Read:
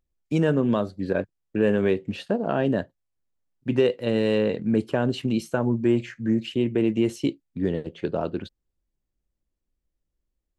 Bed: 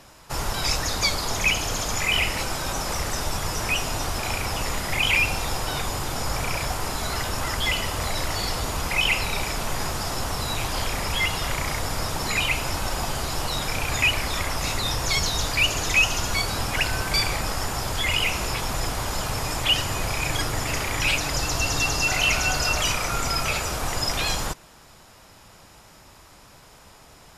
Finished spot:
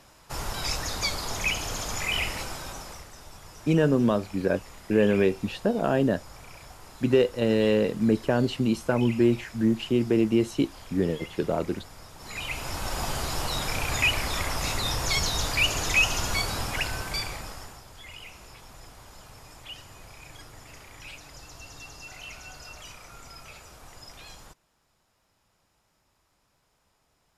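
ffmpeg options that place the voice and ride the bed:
ffmpeg -i stem1.wav -i stem2.wav -filter_complex "[0:a]adelay=3350,volume=0dB[link_01];[1:a]volume=11.5dB,afade=type=out:start_time=2.27:duration=0.81:silence=0.199526,afade=type=in:start_time=12.17:duration=0.92:silence=0.141254,afade=type=out:start_time=16.34:duration=1.49:silence=0.11885[link_02];[link_01][link_02]amix=inputs=2:normalize=0" out.wav

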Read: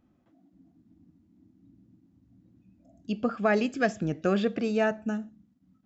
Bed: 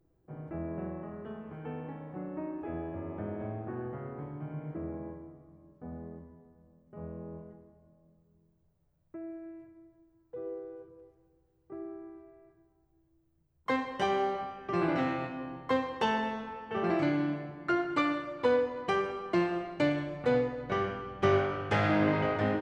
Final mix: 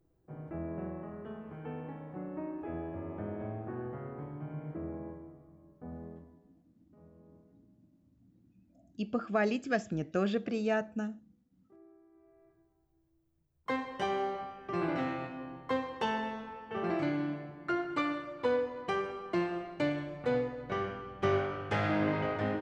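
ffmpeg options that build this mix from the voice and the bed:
ffmpeg -i stem1.wav -i stem2.wav -filter_complex "[0:a]adelay=5900,volume=-5dB[link_01];[1:a]volume=11.5dB,afade=type=out:start_time=6.07:duration=0.57:silence=0.177828,afade=type=in:start_time=12.1:duration=0.44:silence=0.223872[link_02];[link_01][link_02]amix=inputs=2:normalize=0" out.wav

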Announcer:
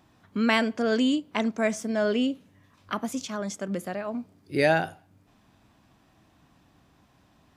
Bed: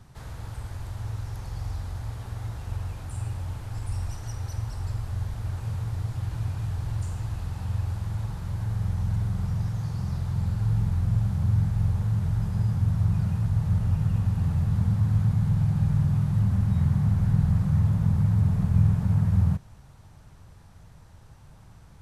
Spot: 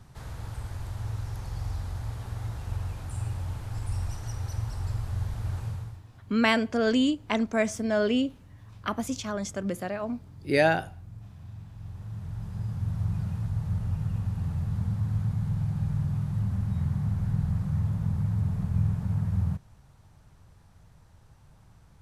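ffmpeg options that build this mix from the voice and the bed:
ffmpeg -i stem1.wav -i stem2.wav -filter_complex "[0:a]adelay=5950,volume=0dB[link_01];[1:a]volume=14.5dB,afade=type=out:start_time=5.58:duration=0.44:silence=0.1,afade=type=in:start_time=11.71:duration=1.33:silence=0.177828[link_02];[link_01][link_02]amix=inputs=2:normalize=0" out.wav

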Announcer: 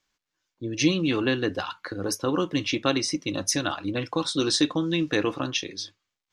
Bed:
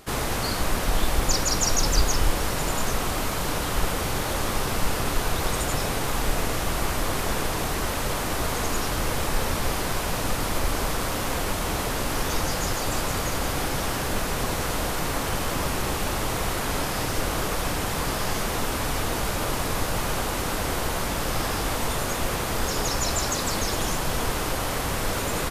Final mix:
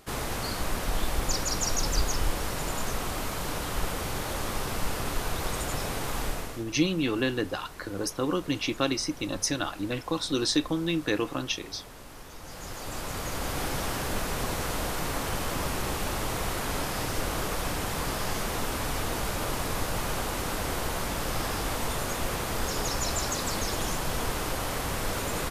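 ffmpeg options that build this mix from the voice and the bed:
ffmpeg -i stem1.wav -i stem2.wav -filter_complex "[0:a]adelay=5950,volume=-3dB[link_01];[1:a]volume=10dB,afade=type=out:start_time=6.22:duration=0.42:silence=0.199526,afade=type=in:start_time=12.39:duration=1.28:silence=0.16788[link_02];[link_01][link_02]amix=inputs=2:normalize=0" out.wav

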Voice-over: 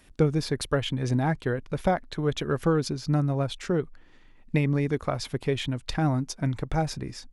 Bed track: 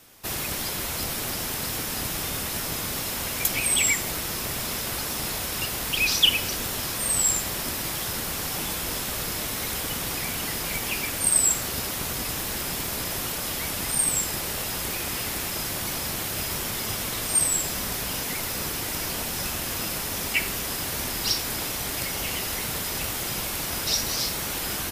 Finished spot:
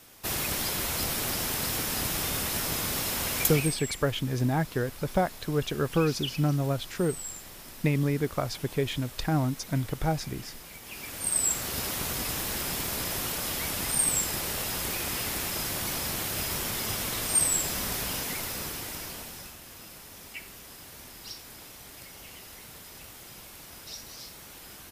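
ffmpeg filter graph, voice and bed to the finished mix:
ffmpeg -i stem1.wav -i stem2.wav -filter_complex "[0:a]adelay=3300,volume=-1.5dB[link_01];[1:a]volume=14dB,afade=type=out:start_time=3.42:duration=0.35:silence=0.158489,afade=type=in:start_time=10.83:duration=1.05:silence=0.188365,afade=type=out:start_time=18.01:duration=1.56:silence=0.177828[link_02];[link_01][link_02]amix=inputs=2:normalize=0" out.wav

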